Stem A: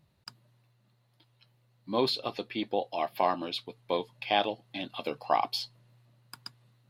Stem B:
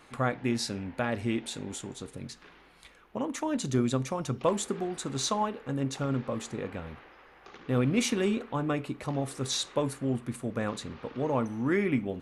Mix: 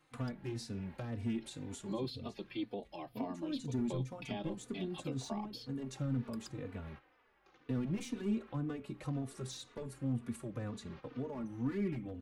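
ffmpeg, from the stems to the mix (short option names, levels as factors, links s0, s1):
-filter_complex "[0:a]lowshelf=f=140:g=-9,volume=1.41[s0];[1:a]volume=15,asoftclip=hard,volume=0.0668,volume=0.794[s1];[s0][s1]amix=inputs=2:normalize=0,agate=range=0.282:threshold=0.00501:ratio=16:detection=peak,acrossover=split=310[s2][s3];[s3]acompressor=threshold=0.00631:ratio=5[s4];[s2][s4]amix=inputs=2:normalize=0,asplit=2[s5][s6];[s6]adelay=3.3,afreqshift=-2[s7];[s5][s7]amix=inputs=2:normalize=1"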